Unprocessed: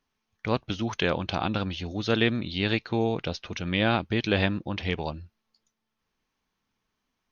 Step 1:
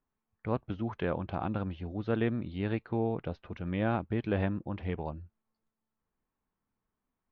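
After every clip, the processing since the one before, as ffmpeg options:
ffmpeg -i in.wav -af "lowpass=1400,lowshelf=frequency=140:gain=3,volume=-5.5dB" out.wav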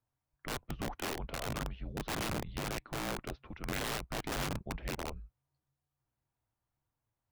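ffmpeg -i in.wav -af "afreqshift=-140,aeval=exprs='(mod(25.1*val(0)+1,2)-1)/25.1':channel_layout=same,volume=-2dB" out.wav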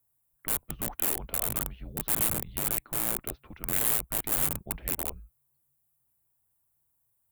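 ffmpeg -i in.wav -af "aexciter=amount=10.6:drive=3.6:freq=7800" out.wav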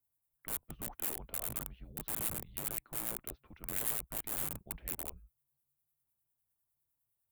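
ffmpeg -i in.wav -filter_complex "[0:a]acrossover=split=1300[link_01][link_02];[link_01]aeval=exprs='val(0)*(1-0.5/2+0.5/2*cos(2*PI*9.9*n/s))':channel_layout=same[link_03];[link_02]aeval=exprs='val(0)*(1-0.5/2-0.5/2*cos(2*PI*9.9*n/s))':channel_layout=same[link_04];[link_03][link_04]amix=inputs=2:normalize=0,volume=-7dB" out.wav

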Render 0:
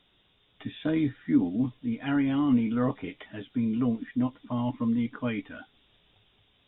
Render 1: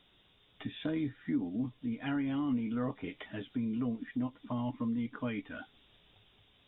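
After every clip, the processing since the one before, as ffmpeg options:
ffmpeg -i in.wav -af "acompressor=threshold=-37dB:ratio=2" out.wav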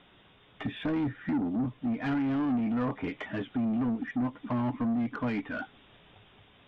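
ffmpeg -i in.wav -filter_complex "[0:a]bass=frequency=250:gain=10,treble=frequency=4000:gain=-14,asplit=2[link_01][link_02];[link_02]highpass=frequency=720:poles=1,volume=23dB,asoftclip=type=tanh:threshold=-18.5dB[link_03];[link_01][link_03]amix=inputs=2:normalize=0,lowpass=frequency=1800:poles=1,volume=-6dB,volume=-3dB" out.wav

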